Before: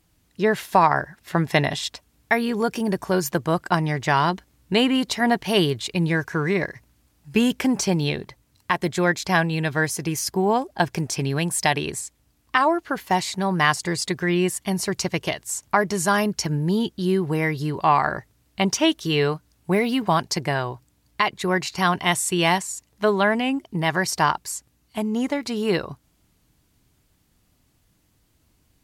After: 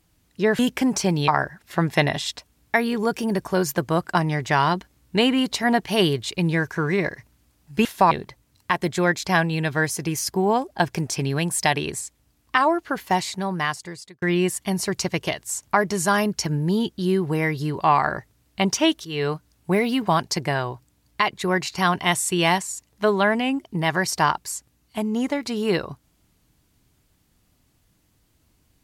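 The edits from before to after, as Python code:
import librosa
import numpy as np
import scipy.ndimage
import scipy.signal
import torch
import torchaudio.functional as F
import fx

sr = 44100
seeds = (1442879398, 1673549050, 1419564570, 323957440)

y = fx.edit(x, sr, fx.swap(start_s=0.59, length_s=0.26, other_s=7.42, other_length_s=0.69),
    fx.fade_out_span(start_s=13.12, length_s=1.1),
    fx.fade_in_from(start_s=19.05, length_s=0.3, floor_db=-15.5), tone=tone)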